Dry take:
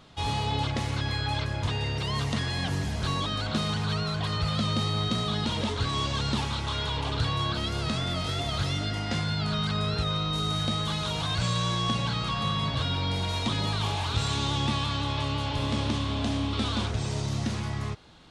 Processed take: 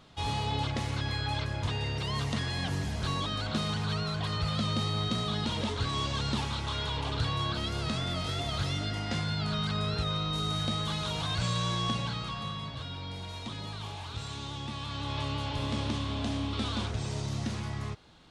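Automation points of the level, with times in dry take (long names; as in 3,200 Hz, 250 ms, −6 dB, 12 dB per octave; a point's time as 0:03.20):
0:11.86 −3 dB
0:12.75 −11 dB
0:14.71 −11 dB
0:15.17 −4 dB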